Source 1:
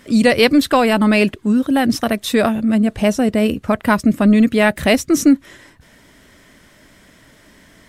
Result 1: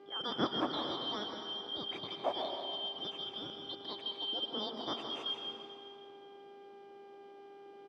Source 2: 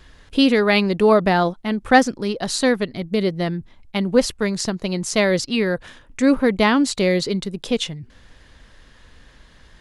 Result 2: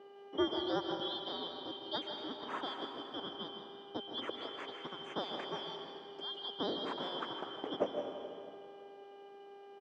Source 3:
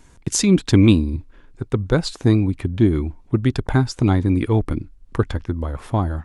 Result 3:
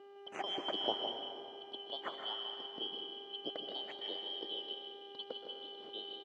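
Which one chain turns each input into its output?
band-splitting scrambler in four parts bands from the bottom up 3412
hum with harmonics 400 Hz, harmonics 29, −47 dBFS −2 dB per octave
four-pole ladder band-pass 400 Hz, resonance 30%
single-tap delay 160 ms −9.5 dB
dense smooth reverb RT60 2.5 s, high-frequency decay 0.85×, pre-delay 110 ms, DRR 4.5 dB
level +8 dB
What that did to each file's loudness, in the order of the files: −22.5, −20.5, −21.5 LU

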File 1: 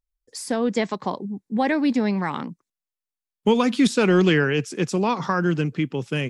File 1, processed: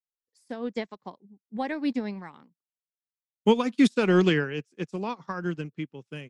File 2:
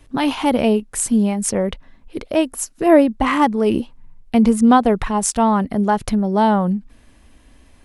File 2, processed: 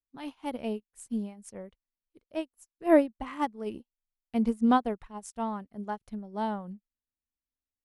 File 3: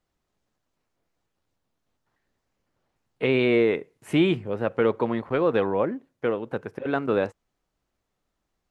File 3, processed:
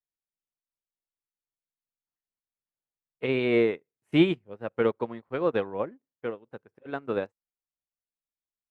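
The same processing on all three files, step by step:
expander for the loud parts 2.5 to 1, over −37 dBFS
normalise the peak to −9 dBFS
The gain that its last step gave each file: −0.5, −7.5, +1.5 decibels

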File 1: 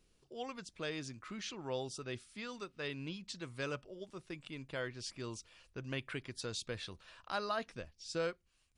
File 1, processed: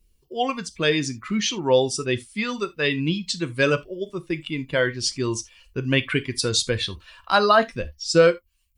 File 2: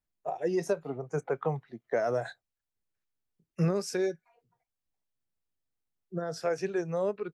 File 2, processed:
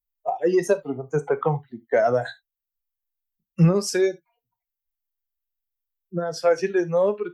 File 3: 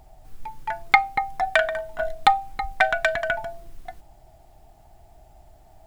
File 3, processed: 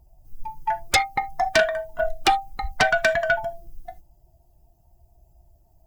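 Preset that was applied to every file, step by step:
spectral dynamics exaggerated over time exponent 1.5
reverb whose tail is shaped and stops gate 100 ms falling, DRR 10 dB
sine wavefolder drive 12 dB, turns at −2 dBFS
loudness normalisation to −23 LKFS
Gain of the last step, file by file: +6.0, −4.5, −9.5 decibels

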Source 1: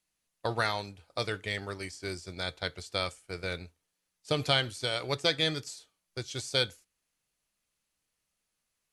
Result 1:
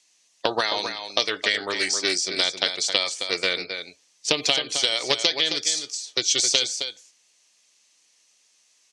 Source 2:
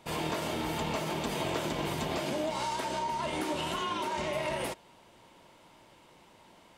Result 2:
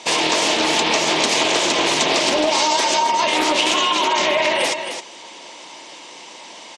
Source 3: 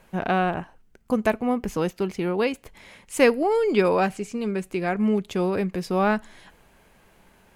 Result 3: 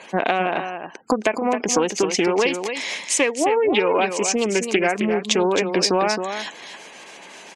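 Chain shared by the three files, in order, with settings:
gate on every frequency bin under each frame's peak −30 dB strong
spectral tilt +3 dB per octave
downward compressor 16 to 1, threshold −32 dBFS
loudspeaker in its box 250–7,600 Hz, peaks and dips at 300 Hz +3 dB, 1,400 Hz −8 dB, 5,900 Hz +5 dB
single-tap delay 266 ms −8 dB
highs frequency-modulated by the lows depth 0.22 ms
normalise the peak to −3 dBFS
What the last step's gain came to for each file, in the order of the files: +14.5, +18.5, +17.0 decibels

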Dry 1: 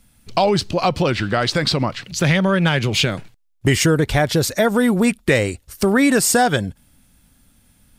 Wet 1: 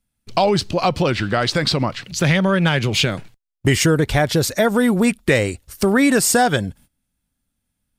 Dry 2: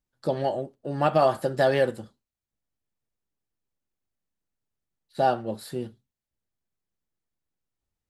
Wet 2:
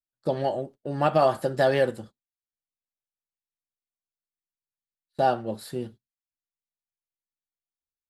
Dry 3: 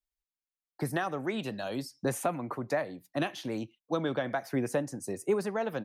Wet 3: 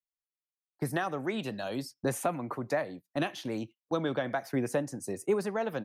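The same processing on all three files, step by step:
noise gate −44 dBFS, range −20 dB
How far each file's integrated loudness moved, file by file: 0.0, 0.0, 0.0 LU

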